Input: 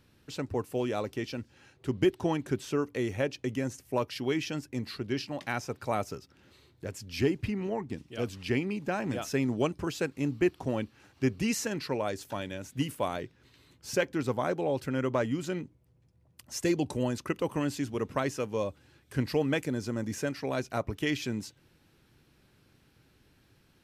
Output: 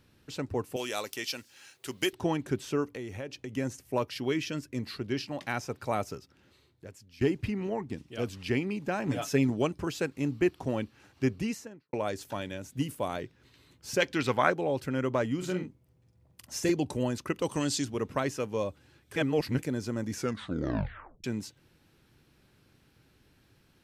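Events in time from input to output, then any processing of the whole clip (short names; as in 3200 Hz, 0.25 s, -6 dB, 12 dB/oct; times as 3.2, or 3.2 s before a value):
0.76–2.13 tilt +4.5 dB/oct
2.88–3.57 compressor 3:1, threshold -37 dBFS
4.3–4.79 Butterworth band-stop 810 Hz, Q 4.3
6.07–7.21 fade out, to -18.5 dB
9.07–9.5 comb 7 ms, depth 67%
11.23–11.93 studio fade out
12.6–13.09 bell 1900 Hz -4.5 dB 2.4 oct
14–14.49 bell 4900 Hz -> 1600 Hz +13 dB 2.1 oct
15.37–16.7 doubler 44 ms -5 dB
17.42–17.85 band shelf 5500 Hz +11.5 dB
19.16–19.59 reverse
20.12 tape stop 1.12 s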